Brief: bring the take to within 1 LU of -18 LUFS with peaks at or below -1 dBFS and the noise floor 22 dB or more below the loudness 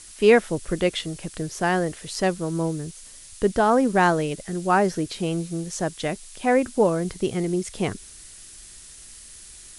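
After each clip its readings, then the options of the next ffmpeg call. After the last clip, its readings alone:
noise floor -45 dBFS; noise floor target -46 dBFS; loudness -23.5 LUFS; peak level -4.5 dBFS; loudness target -18.0 LUFS
-> -af "afftdn=nr=6:nf=-45"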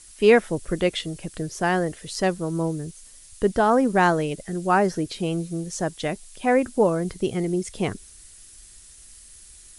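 noise floor -48 dBFS; loudness -23.5 LUFS; peak level -5.0 dBFS; loudness target -18.0 LUFS
-> -af "volume=1.88,alimiter=limit=0.891:level=0:latency=1"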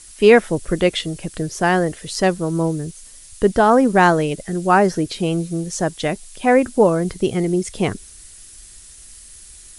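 loudness -18.5 LUFS; peak level -1.0 dBFS; noise floor -43 dBFS

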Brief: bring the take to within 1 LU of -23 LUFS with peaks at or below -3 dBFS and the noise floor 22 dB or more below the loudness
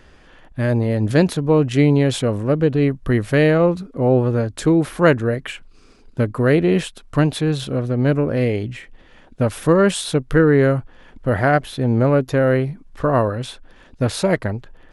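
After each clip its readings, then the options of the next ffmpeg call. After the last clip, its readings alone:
loudness -18.5 LUFS; peak level -2.5 dBFS; loudness target -23.0 LUFS
-> -af "volume=0.596"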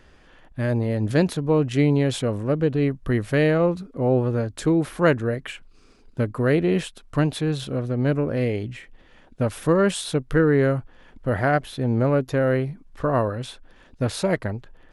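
loudness -23.0 LUFS; peak level -7.0 dBFS; noise floor -52 dBFS

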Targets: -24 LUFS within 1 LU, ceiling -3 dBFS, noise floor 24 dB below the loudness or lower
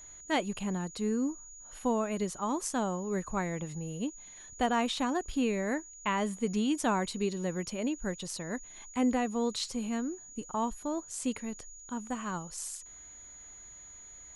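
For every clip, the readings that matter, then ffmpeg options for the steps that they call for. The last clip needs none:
steady tone 6.8 kHz; tone level -48 dBFS; loudness -33.5 LUFS; peak level -16.5 dBFS; loudness target -24.0 LUFS
-> -af "bandreject=f=6800:w=30"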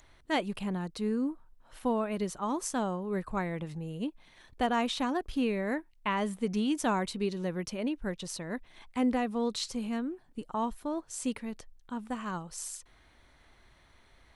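steady tone not found; loudness -33.5 LUFS; peak level -17.0 dBFS; loudness target -24.0 LUFS
-> -af "volume=2.99"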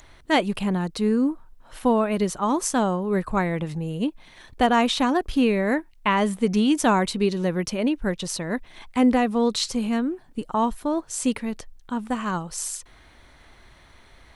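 loudness -24.0 LUFS; peak level -7.5 dBFS; noise floor -53 dBFS

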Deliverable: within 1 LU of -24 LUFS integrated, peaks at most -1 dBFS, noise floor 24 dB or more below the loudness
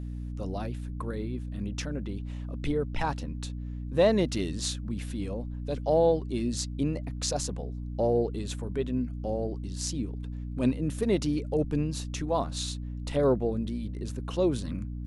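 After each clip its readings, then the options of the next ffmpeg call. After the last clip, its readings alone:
hum 60 Hz; highest harmonic 300 Hz; hum level -33 dBFS; loudness -30.5 LUFS; peak level -10.5 dBFS; loudness target -24.0 LUFS
-> -af "bandreject=f=60:t=h:w=4,bandreject=f=120:t=h:w=4,bandreject=f=180:t=h:w=4,bandreject=f=240:t=h:w=4,bandreject=f=300:t=h:w=4"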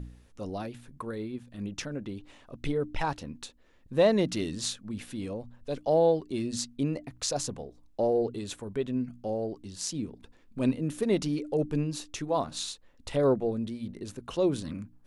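hum not found; loudness -31.0 LUFS; peak level -11.5 dBFS; loudness target -24.0 LUFS
-> -af "volume=2.24"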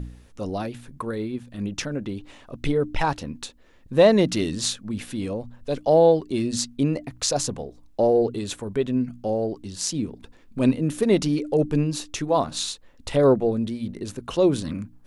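loudness -24.0 LUFS; peak level -4.5 dBFS; noise floor -51 dBFS

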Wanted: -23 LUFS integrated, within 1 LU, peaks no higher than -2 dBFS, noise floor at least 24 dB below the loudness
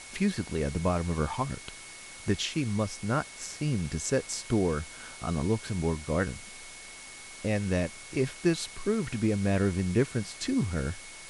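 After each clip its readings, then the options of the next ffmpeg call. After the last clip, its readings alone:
steady tone 2.2 kHz; tone level -49 dBFS; noise floor -46 dBFS; noise floor target -55 dBFS; loudness -30.5 LUFS; peak level -12.5 dBFS; loudness target -23.0 LUFS
-> -af "bandreject=f=2200:w=30"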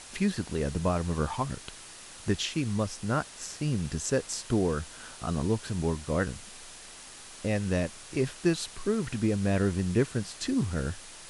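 steady tone not found; noise floor -47 dBFS; noise floor target -55 dBFS
-> -af "afftdn=nr=8:nf=-47"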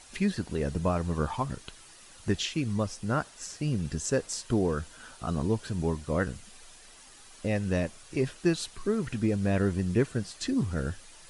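noise floor -52 dBFS; noise floor target -55 dBFS
-> -af "afftdn=nr=6:nf=-52"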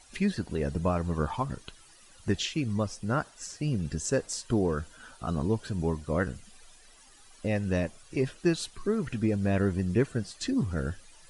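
noise floor -56 dBFS; loudness -30.5 LUFS; peak level -12.5 dBFS; loudness target -23.0 LUFS
-> -af "volume=2.37"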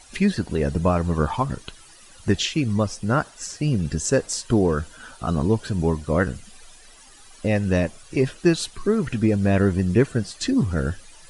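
loudness -23.0 LUFS; peak level -5.0 dBFS; noise floor -48 dBFS

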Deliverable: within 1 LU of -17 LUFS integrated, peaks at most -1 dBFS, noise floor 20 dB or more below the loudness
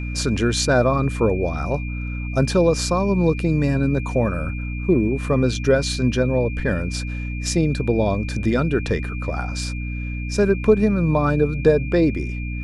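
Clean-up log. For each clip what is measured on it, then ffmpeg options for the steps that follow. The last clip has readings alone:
hum 60 Hz; highest harmonic 300 Hz; hum level -25 dBFS; steady tone 2.4 kHz; tone level -35 dBFS; loudness -21.0 LUFS; peak level -3.0 dBFS; loudness target -17.0 LUFS
-> -af "bandreject=f=60:t=h:w=6,bandreject=f=120:t=h:w=6,bandreject=f=180:t=h:w=6,bandreject=f=240:t=h:w=6,bandreject=f=300:t=h:w=6"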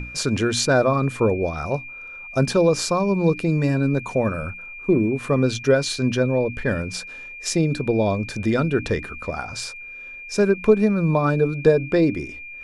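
hum not found; steady tone 2.4 kHz; tone level -35 dBFS
-> -af "bandreject=f=2400:w=30"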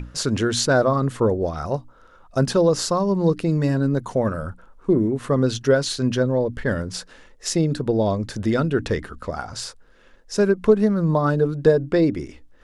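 steady tone not found; loudness -21.5 LUFS; peak level -4.0 dBFS; loudness target -17.0 LUFS
-> -af "volume=1.68,alimiter=limit=0.891:level=0:latency=1"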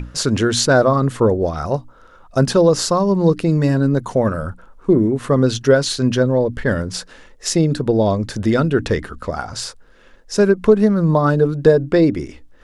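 loudness -17.0 LUFS; peak level -1.0 dBFS; noise floor -47 dBFS

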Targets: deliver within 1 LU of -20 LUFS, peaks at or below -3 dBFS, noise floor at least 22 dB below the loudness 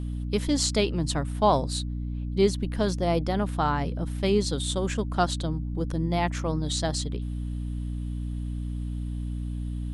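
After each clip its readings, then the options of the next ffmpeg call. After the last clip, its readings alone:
hum 60 Hz; highest harmonic 300 Hz; hum level -29 dBFS; loudness -28.0 LUFS; peak level -9.5 dBFS; loudness target -20.0 LUFS
-> -af "bandreject=f=60:t=h:w=4,bandreject=f=120:t=h:w=4,bandreject=f=180:t=h:w=4,bandreject=f=240:t=h:w=4,bandreject=f=300:t=h:w=4"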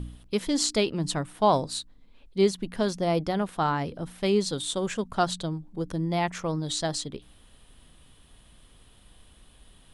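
hum not found; loudness -28.0 LUFS; peak level -10.0 dBFS; loudness target -20.0 LUFS
-> -af "volume=2.51,alimiter=limit=0.708:level=0:latency=1"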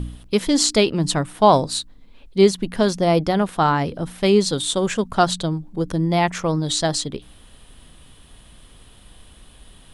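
loudness -20.0 LUFS; peak level -3.0 dBFS; noise floor -48 dBFS

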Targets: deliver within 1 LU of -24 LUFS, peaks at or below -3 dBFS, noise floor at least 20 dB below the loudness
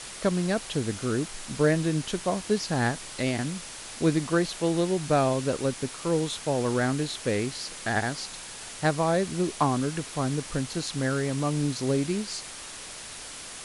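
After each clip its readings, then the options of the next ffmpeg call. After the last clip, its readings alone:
noise floor -41 dBFS; noise floor target -48 dBFS; loudness -27.5 LUFS; peak level -10.5 dBFS; loudness target -24.0 LUFS
-> -af "afftdn=nr=7:nf=-41"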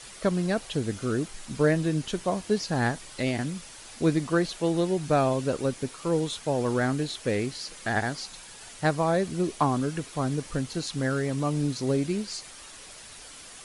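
noise floor -46 dBFS; noise floor target -48 dBFS
-> -af "afftdn=nr=6:nf=-46"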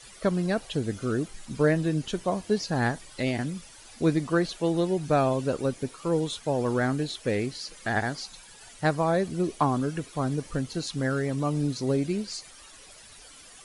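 noise floor -50 dBFS; loudness -28.0 LUFS; peak level -11.0 dBFS; loudness target -24.0 LUFS
-> -af "volume=1.58"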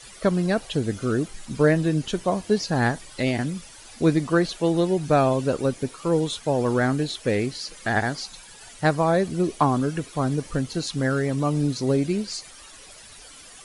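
loudness -24.0 LUFS; peak level -7.0 dBFS; noise floor -46 dBFS

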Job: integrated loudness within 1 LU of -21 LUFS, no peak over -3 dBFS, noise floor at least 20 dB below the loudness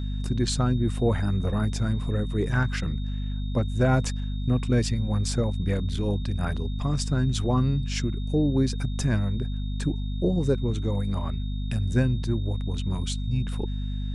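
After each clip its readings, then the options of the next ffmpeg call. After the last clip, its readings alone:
hum 50 Hz; highest harmonic 250 Hz; hum level -27 dBFS; steady tone 3.7 kHz; tone level -47 dBFS; loudness -27.0 LUFS; peak level -9.5 dBFS; loudness target -21.0 LUFS
-> -af "bandreject=f=50:t=h:w=4,bandreject=f=100:t=h:w=4,bandreject=f=150:t=h:w=4,bandreject=f=200:t=h:w=4,bandreject=f=250:t=h:w=4"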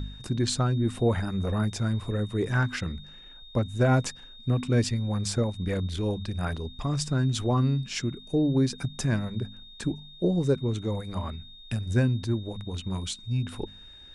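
hum not found; steady tone 3.7 kHz; tone level -47 dBFS
-> -af "bandreject=f=3700:w=30"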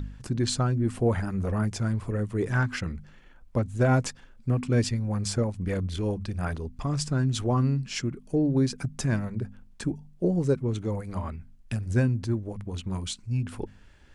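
steady tone not found; loudness -28.5 LUFS; peak level -11.5 dBFS; loudness target -21.0 LUFS
-> -af "volume=2.37"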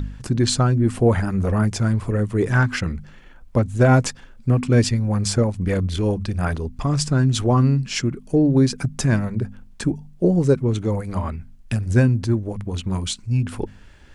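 loudness -21.0 LUFS; peak level -4.0 dBFS; noise floor -45 dBFS

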